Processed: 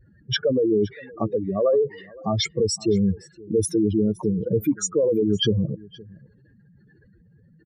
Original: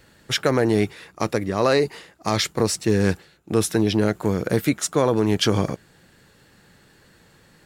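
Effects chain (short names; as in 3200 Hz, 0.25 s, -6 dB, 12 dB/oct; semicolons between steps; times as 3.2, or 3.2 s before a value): spectral contrast raised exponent 3.9; echo 0.518 s -22.5 dB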